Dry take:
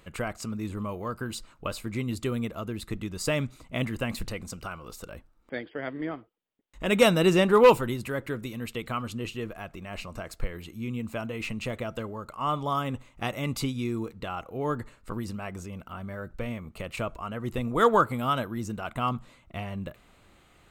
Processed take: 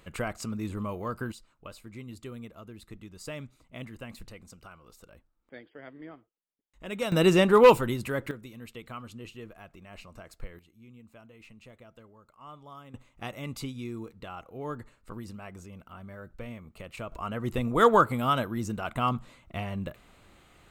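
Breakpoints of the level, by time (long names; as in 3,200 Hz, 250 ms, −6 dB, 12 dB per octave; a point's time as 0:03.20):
−0.5 dB
from 0:01.32 −12 dB
from 0:07.12 +0.5 dB
from 0:08.31 −9.5 dB
from 0:10.59 −19 dB
from 0:12.94 −7 dB
from 0:17.12 +1 dB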